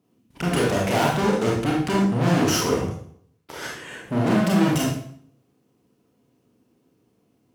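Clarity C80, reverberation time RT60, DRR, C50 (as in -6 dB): 6.0 dB, 0.60 s, -3.0 dB, 1.5 dB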